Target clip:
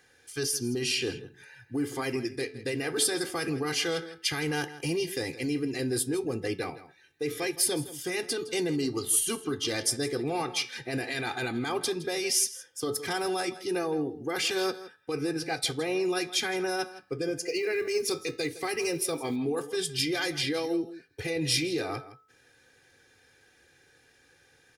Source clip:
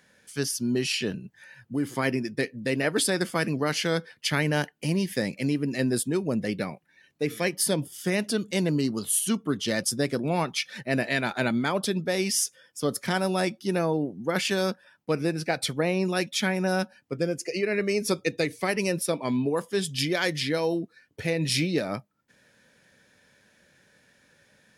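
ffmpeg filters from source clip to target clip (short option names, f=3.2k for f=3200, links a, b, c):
-filter_complex "[0:a]aecho=1:1:2.5:0.98,bandreject=f=432.8:t=h:w=4,bandreject=f=865.6:t=h:w=4,bandreject=f=1.2984k:t=h:w=4,bandreject=f=1.7312k:t=h:w=4,bandreject=f=2.164k:t=h:w=4,bandreject=f=2.5968k:t=h:w=4,bandreject=f=3.0296k:t=h:w=4,bandreject=f=3.4624k:t=h:w=4,bandreject=f=3.8952k:t=h:w=4,acrossover=split=4000[a][b];[a]alimiter=limit=-20.5dB:level=0:latency=1:release=15[c];[c][b]amix=inputs=2:normalize=0,flanger=delay=8.7:depth=5.2:regen=-79:speed=0.14:shape=sinusoidal,asettb=1/sr,asplit=3[d][e][f];[d]atrim=end=17.454[g];[e]atrim=start=17.45:end=19.36,asetpts=PTS-STARTPTS,afade=t=in:d=0.004:c=qsin,afade=t=out:st=1.906:d=0.004:c=qsin,acrusher=bits=8:mode=log:mix=0:aa=0.000001[h];[f]atrim=start=19.356[i];[g][h]acrossfade=d=0.004:c1=hsin:c2=qsin[j];[j][i]acrossfade=d=0.004:c1=qsin:c2=hsin,asplit=2[k][l];[l]adelay=163.3,volume=-15dB,highshelf=f=4k:g=-3.67[m];[k][m]amix=inputs=2:normalize=0,volume=2dB"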